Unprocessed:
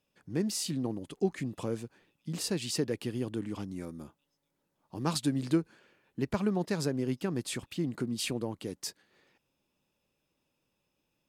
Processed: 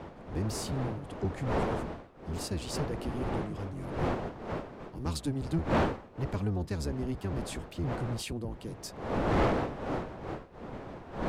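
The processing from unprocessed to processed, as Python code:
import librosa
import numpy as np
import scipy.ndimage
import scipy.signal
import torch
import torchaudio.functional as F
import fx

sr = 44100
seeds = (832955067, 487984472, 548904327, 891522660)

y = fx.octave_divider(x, sr, octaves=1, level_db=4.0)
y = fx.dmg_wind(y, sr, seeds[0], corner_hz=630.0, level_db=-28.0)
y = 10.0 ** (-16.0 / 20.0) * np.tanh(y / 10.0 ** (-16.0 / 20.0))
y = y * librosa.db_to_amplitude(-5.0)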